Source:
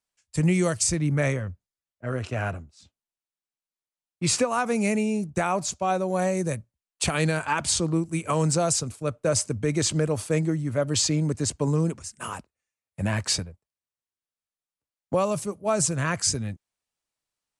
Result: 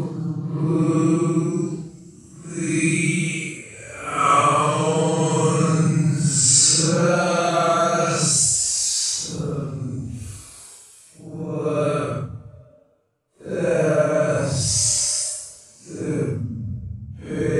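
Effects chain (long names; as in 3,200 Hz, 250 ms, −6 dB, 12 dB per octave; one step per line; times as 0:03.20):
gain on a spectral selection 0:07.95–0:08.71, 1,100–8,900 Hz +7 dB
extreme stretch with random phases 9.8×, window 0.05 s, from 0:07.86
level +3 dB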